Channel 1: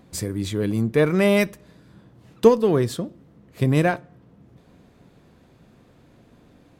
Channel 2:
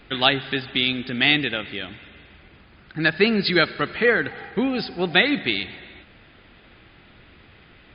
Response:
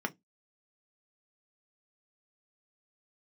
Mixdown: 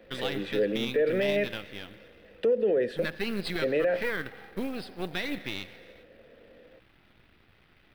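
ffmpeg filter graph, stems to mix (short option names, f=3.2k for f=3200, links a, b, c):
-filter_complex "[0:a]acrossover=split=310[a][b];[b]acompressor=threshold=-22dB:ratio=2.5[c];[a][c]amix=inputs=2:normalize=0,asplit=3[d][e][f];[d]bandpass=f=530:t=q:w=8,volume=0dB[g];[e]bandpass=f=1.84k:t=q:w=8,volume=-6dB[h];[f]bandpass=f=2.48k:t=q:w=8,volume=-9dB[i];[g][h][i]amix=inputs=3:normalize=0,volume=2.5dB,asplit=2[j][k];[k]volume=-9dB[l];[1:a]aeval=exprs='if(lt(val(0),0),0.251*val(0),val(0))':c=same,acrusher=bits=5:mode=log:mix=0:aa=0.000001,volume=-14dB[m];[2:a]atrim=start_sample=2205[n];[l][n]afir=irnorm=-1:irlink=0[o];[j][m][o]amix=inputs=3:normalize=0,equalizer=f=6.9k:w=2.6:g=-10.5,acontrast=50,alimiter=limit=-18dB:level=0:latency=1:release=53"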